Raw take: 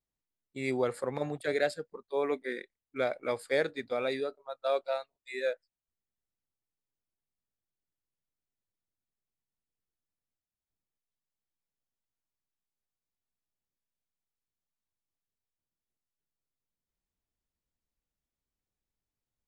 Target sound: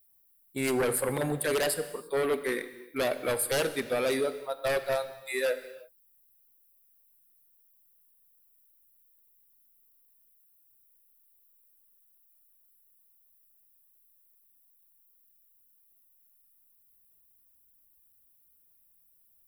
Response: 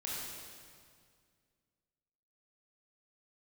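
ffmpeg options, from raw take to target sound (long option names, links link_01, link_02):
-filter_complex "[0:a]aexciter=amount=14.6:drive=6:freq=9500,aeval=exprs='0.168*sin(PI/2*3.55*val(0)/0.168)':channel_layout=same,asplit=2[link_01][link_02];[1:a]atrim=start_sample=2205,afade=type=out:start_time=0.4:duration=0.01,atrim=end_sample=18081[link_03];[link_02][link_03]afir=irnorm=-1:irlink=0,volume=-11dB[link_04];[link_01][link_04]amix=inputs=2:normalize=0,volume=-9dB"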